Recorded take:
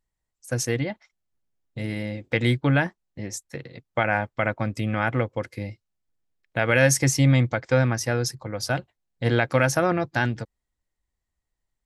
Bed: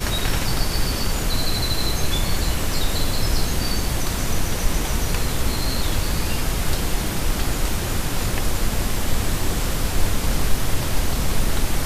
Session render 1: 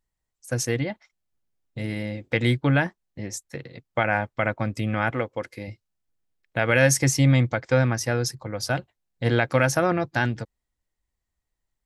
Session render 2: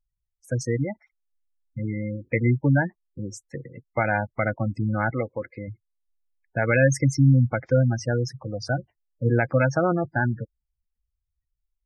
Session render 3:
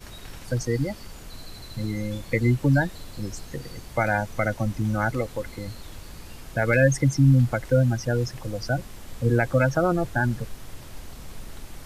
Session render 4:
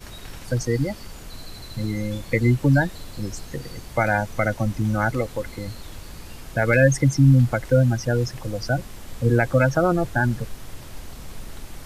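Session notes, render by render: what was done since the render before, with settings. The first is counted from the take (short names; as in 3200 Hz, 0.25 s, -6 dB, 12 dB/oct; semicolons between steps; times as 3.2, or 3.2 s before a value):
5.1–5.68 bell 98 Hz -8 dB 2.2 oct
tone controls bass +2 dB, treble -7 dB; spectral gate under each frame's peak -15 dB strong
add bed -19 dB
gain +2.5 dB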